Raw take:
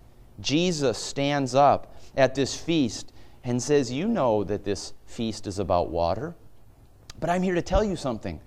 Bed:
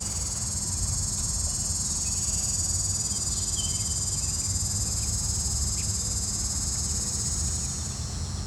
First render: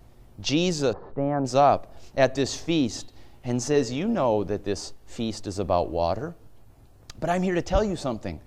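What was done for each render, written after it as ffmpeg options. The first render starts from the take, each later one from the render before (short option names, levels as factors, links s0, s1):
-filter_complex "[0:a]asettb=1/sr,asplit=3[s0][s1][s2];[s0]atrim=end=0.934[s3];[s1]atrim=start=0.93:end=1.45,asetpts=PTS-STARTPTS,afade=t=in:d=0.004:c=qsin,afade=t=out:st=0.516:d=0.004:c=qsin,lowpass=f=1300:w=0.5412,lowpass=f=1300:w=1.3066[s4];[s2]atrim=start=1.446[s5];[s3][s4]acrossfade=d=0.004:c1=hsin:c2=qsin[s6];[s6][s5]acrossfade=d=0.004:c1=qsin:c2=hsin,asettb=1/sr,asplit=3[s7][s8][s9];[s7]atrim=end=2.884[s10];[s8]atrim=start=2.88:end=3.99,asetpts=PTS-STARTPTS,afade=t=in:d=0.004:c=qsin,afade=t=out:st=1.106:d=0.004:c=qsin,bandreject=f=110.6:t=h:w=4,bandreject=f=221.2:t=h:w=4,bandreject=f=331.8:t=h:w=4,bandreject=f=442.4:t=h:w=4,bandreject=f=553:t=h:w=4,bandreject=f=663.6:t=h:w=4,bandreject=f=774.2:t=h:w=4,bandreject=f=884.8:t=h:w=4,bandreject=f=995.4:t=h:w=4,bandreject=f=1106:t=h:w=4,bandreject=f=1216.6:t=h:w=4,bandreject=f=1327.2:t=h:w=4,bandreject=f=1437.8:t=h:w=4,bandreject=f=1548.4:t=h:w=4,bandreject=f=1659:t=h:w=4,bandreject=f=1769.6:t=h:w=4,bandreject=f=1880.2:t=h:w=4,bandreject=f=1990.8:t=h:w=4,bandreject=f=2101.4:t=h:w=4,bandreject=f=2212:t=h:w=4,bandreject=f=2322.6:t=h:w=4,bandreject=f=2433.2:t=h:w=4,bandreject=f=2543.8:t=h:w=4,bandreject=f=2654.4:t=h:w=4,bandreject=f=2765:t=h:w=4,bandreject=f=2875.6:t=h:w=4,bandreject=f=2986.2:t=h:w=4,bandreject=f=3096.8:t=h:w=4,bandreject=f=3207.4:t=h:w=4,bandreject=f=3318:t=h:w=4,bandreject=f=3428.6:t=h:w=4,bandreject=f=3539.2:t=h:w=4,bandreject=f=3649.8:t=h:w=4,bandreject=f=3760.4:t=h:w=4,bandreject=f=3871:t=h:w=4,bandreject=f=3981.6:t=h:w=4,bandreject=f=4092.2:t=h:w=4,bandreject=f=4202.8:t=h:w=4[s11];[s9]atrim=start=3.986[s12];[s10][s11]acrossfade=d=0.004:c1=hsin:c2=qsin[s13];[s13][s12]acrossfade=d=0.004:c1=qsin:c2=hsin"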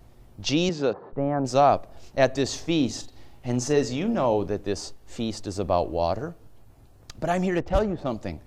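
-filter_complex "[0:a]asettb=1/sr,asplit=3[s0][s1][s2];[s0]atrim=end=0.694[s3];[s1]atrim=start=0.69:end=1.13,asetpts=PTS-STARTPTS,afade=t=in:d=0.004:c=qsin,afade=t=out:st=0.436:d=0.004:c=qsin,highpass=160,lowpass=3300[s4];[s2]atrim=start=1.126[s5];[s3][s4]acrossfade=d=0.004:c1=hsin:c2=qsin[s6];[s6][s5]acrossfade=d=0.004:c1=qsin:c2=hsin,asettb=1/sr,asplit=3[s7][s8][s9];[s7]atrim=end=2.754[s10];[s8]atrim=start=2.75:end=4.46,asetpts=PTS-STARTPTS,afade=t=in:d=0.004:c=qsin,afade=t=out:st=1.706:d=0.004:c=qsin,asplit=2[s11][s12];[s12]adelay=40,volume=0.251[s13];[s11][s13]amix=inputs=2:normalize=0,atrim=end_sample=75411[s14];[s9]atrim=start=4.456[s15];[s10][s14]acrossfade=d=0.004:c1=hsin:c2=qsin[s16];[s16][s15]acrossfade=d=0.004:c1=qsin:c2=hsin,asettb=1/sr,asplit=3[s17][s18][s19];[s17]atrim=end=7.574[s20];[s18]atrim=start=7.57:end=8.06,asetpts=PTS-STARTPTS,afade=t=in:d=0.004:c=qsin,afade=t=out:st=0.486:d=0.004:c=qsin,adynamicsmooth=sensitivity=3.5:basefreq=1200[s21];[s19]atrim=start=8.056[s22];[s20][s21]acrossfade=d=0.004:c1=hsin:c2=qsin[s23];[s23][s22]acrossfade=d=0.004:c1=qsin:c2=hsin"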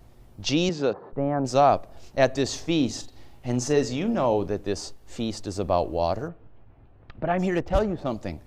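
-filter_complex "[0:a]asplit=3[s0][s1][s2];[s0]afade=t=out:st=6.27:d=0.02[s3];[s1]lowpass=f=2800:w=0.5412,lowpass=f=2800:w=1.3066,afade=t=in:st=6.27:d=0.02,afade=t=out:st=7.38:d=0.02[s4];[s2]afade=t=in:st=7.38:d=0.02[s5];[s3][s4][s5]amix=inputs=3:normalize=0"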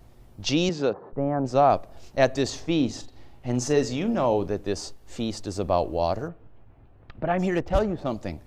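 -filter_complex "[0:a]asettb=1/sr,asplit=3[s0][s1][s2];[s0]atrim=end=0.894[s3];[s1]atrim=start=0.89:end=1.7,asetpts=PTS-STARTPTS,afade=t=in:d=0.004:c=qsin,afade=t=out:st=0.806:d=0.004:c=qsin,highshelf=f=3400:g=-12[s4];[s2]atrim=start=1.696[s5];[s3][s4]acrossfade=d=0.004:c1=hsin:c2=qsin[s6];[s6][s5]acrossfade=d=0.004:c1=qsin:c2=hsin,asettb=1/sr,asplit=3[s7][s8][s9];[s7]atrim=end=2.504[s10];[s8]atrim=start=2.5:end=3.55,asetpts=PTS-STARTPTS,afade=t=in:d=0.004:c=qsin,afade=t=out:st=1.046:d=0.004:c=qsin,highshelf=f=4500:g=-7[s11];[s9]atrim=start=3.546[s12];[s10][s11]acrossfade=d=0.004:c1=hsin:c2=qsin[s13];[s13][s12]acrossfade=d=0.004:c1=qsin:c2=hsin"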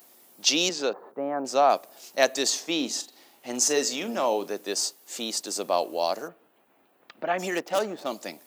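-af "highpass=f=200:w=0.5412,highpass=f=200:w=1.3066,aemphasis=mode=production:type=riaa"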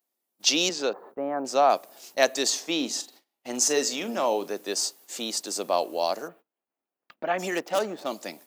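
-af "highpass=100,agate=range=0.0447:threshold=0.00355:ratio=16:detection=peak"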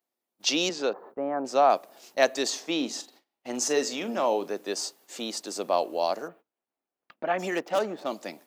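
-af "highshelf=f=4800:g=-9"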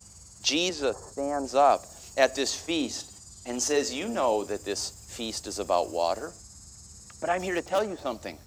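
-filter_complex "[1:a]volume=0.1[s0];[0:a][s0]amix=inputs=2:normalize=0"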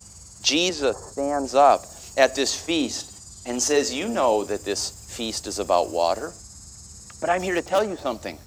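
-af "volume=1.78,alimiter=limit=0.708:level=0:latency=1"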